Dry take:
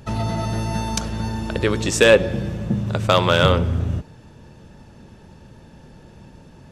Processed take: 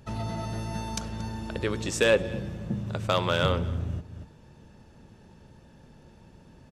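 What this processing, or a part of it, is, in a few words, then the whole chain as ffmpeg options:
ducked delay: -filter_complex "[0:a]asplit=3[a][b][c];[b]adelay=230,volume=-4dB[d];[c]apad=whole_len=306109[e];[d][e]sidechaincompress=threshold=-41dB:ratio=4:attack=16:release=195[f];[a][f]amix=inputs=2:normalize=0,volume=-9dB"

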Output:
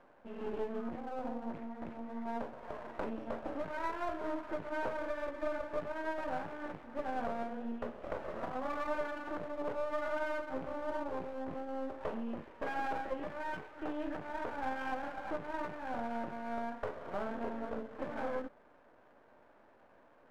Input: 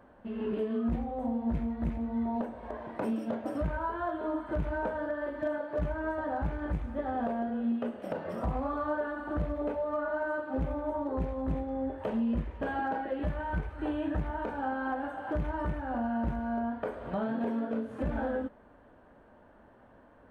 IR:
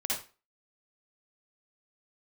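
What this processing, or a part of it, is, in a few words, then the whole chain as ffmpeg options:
crystal radio: -af "highpass=330,lowpass=2.6k,aeval=exprs='if(lt(val(0),0),0.251*val(0),val(0))':c=same"

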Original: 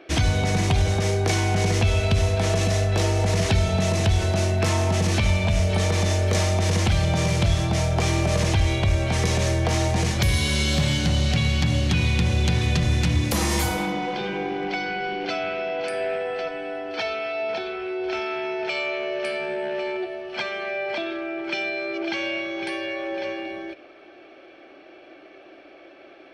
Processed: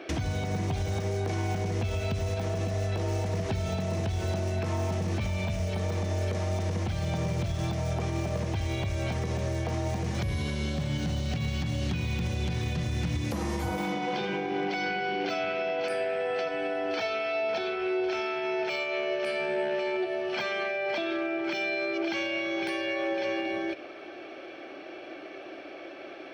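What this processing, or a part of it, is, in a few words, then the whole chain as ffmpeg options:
broadcast voice chain: -af "highpass=73,deesser=0.95,acompressor=threshold=-27dB:ratio=3,equalizer=f=5.8k:t=o:w=0.32:g=3,alimiter=level_in=2dB:limit=-24dB:level=0:latency=1:release=262,volume=-2dB,volume=4.5dB"

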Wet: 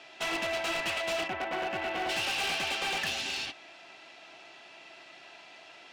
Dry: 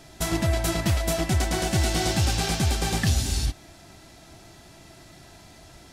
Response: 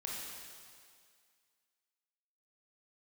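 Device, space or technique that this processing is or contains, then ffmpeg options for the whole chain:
megaphone: -filter_complex "[0:a]asplit=3[a][b][c];[a]afade=t=out:st=1.27:d=0.02[d];[b]lowpass=1.7k,afade=t=in:st=1.27:d=0.02,afade=t=out:st=2.08:d=0.02[e];[c]afade=t=in:st=2.08:d=0.02[f];[d][e][f]amix=inputs=3:normalize=0,highpass=550,lowpass=3.8k,equalizer=f=2.7k:t=o:w=0.49:g=10.5,asoftclip=type=hard:threshold=-28dB"

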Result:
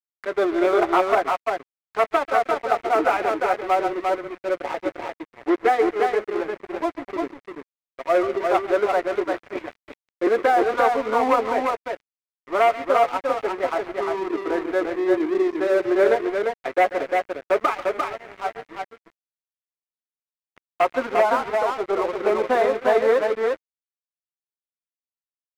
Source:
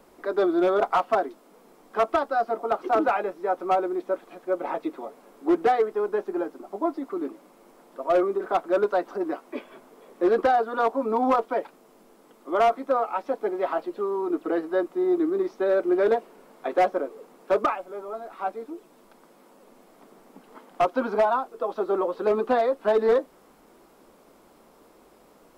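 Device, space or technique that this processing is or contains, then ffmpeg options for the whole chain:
pocket radio on a weak battery: -filter_complex "[0:a]asettb=1/sr,asplit=3[a][b][c];[a]atrim=end=9.444[d];[b]atrim=start=9.44:end=10.27,asetpts=PTS-STARTPTS,afade=t=in:d=0.004:c=qsin,afade=t=out:st=0.826:d=0.004:c=qsin,highpass=f=220:w=0.5412,highpass=f=220:w=1.3066[e];[c]atrim=start=10.266[f];[d][e]acrossfade=d=0.004:c1=hsin:c2=qsin[g];[g][f]acrossfade=d=0.004:c1=qsin:c2=hsin,highpass=280,lowpass=4.2k,aecho=1:1:139|348:0.211|0.668,aeval=exprs='sgn(val(0))*max(abs(val(0))-0.0133,0)':c=same,equalizer=f=2.1k:t=o:w=0.54:g=7,volume=3dB"

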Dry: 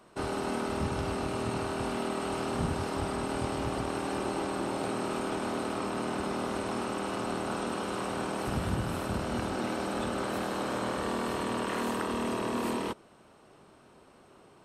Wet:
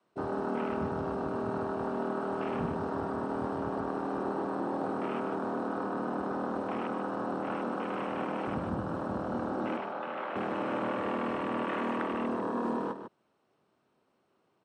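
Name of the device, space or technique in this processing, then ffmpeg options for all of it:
over-cleaned archive recording: -filter_complex "[0:a]asettb=1/sr,asplit=3[a][b][c];[a]atrim=end=9.774[d];[b]atrim=start=9.77:end=10.36,asetpts=PTS-STARTPTS,afade=t=in:d=0.004:c=qsin,afade=t=out:st=0.586:d=0.004:c=qsin,acrossover=split=510 4700:gain=0.2 1 0.0708[e][f][g];[e][f][g]amix=inputs=3:normalize=0[h];[c]atrim=start=10.356[i];[d][h]acrossfade=d=0.004:c1=hsin:c2=qsin[j];[j][i]acrossfade=d=0.004:c1=qsin:c2=hsin,highpass=110,lowpass=6.4k,afwtdn=0.0126,aecho=1:1:148:0.355,adynamicequalizer=threshold=0.00355:dfrequency=110:dqfactor=1.3:tfrequency=110:tqfactor=1.3:attack=5:release=100:ratio=0.375:range=2.5:mode=cutabove:tftype=bell"

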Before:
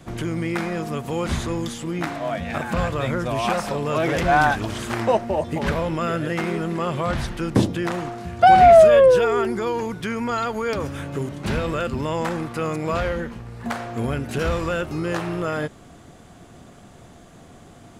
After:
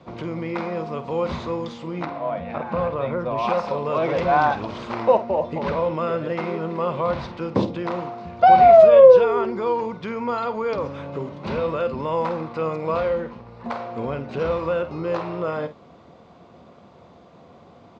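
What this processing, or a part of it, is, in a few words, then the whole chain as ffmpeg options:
guitar cabinet: -filter_complex "[0:a]asettb=1/sr,asplit=3[a][b][c];[a]atrim=end=2.054[d];[b]atrim=start=2.05:end=3.38,asetpts=PTS-STARTPTS,afade=t=in:d=0.004:c=qsin,afade=t=out:st=1.326:d=0.004:c=qsin,aemphasis=mode=reproduction:type=75kf[e];[c]atrim=start=3.376[f];[d][e]acrossfade=d=0.004:c1=hsin:c2=qsin[g];[g][f]acrossfade=d=0.004:c1=qsin:c2=hsin,asplit=2[h][i];[i]adelay=50,volume=-12.5dB[j];[h][j]amix=inputs=2:normalize=0,asettb=1/sr,asplit=3[k][l][m];[k]atrim=end=14.224[n];[l]atrim=start=14.22:end=15.06,asetpts=PTS-STARTPTS,afade=t=in:d=0.004:c=qsin,afade=t=out:st=0.836:d=0.004:c=qsin,highshelf=f=5.3k:g=-4.5[o];[m]atrim=start=15.056[p];[n][o]acrossfade=d=0.004:c1=hsin:c2=qsin[q];[q][p]acrossfade=d=0.004:c1=qsin:c2=hsin,highpass=95,equalizer=f=120:t=q:w=4:g=-6,equalizer=f=290:t=q:w=4:g=-3,equalizer=f=520:t=q:w=4:g=7,equalizer=f=1k:t=q:w=4:g=7,equalizer=f=1.7k:t=q:w=4:g=-8,equalizer=f=3.1k:t=q:w=4:g=-5,lowpass=f=4.5k:w=0.5412,lowpass=f=4.5k:w=1.3066,volume=-2.5dB"

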